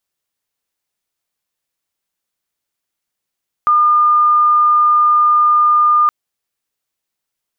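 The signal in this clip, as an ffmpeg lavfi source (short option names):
-f lavfi -i "aevalsrc='0.398*sin(2*PI*1210*t)':d=2.42:s=44100"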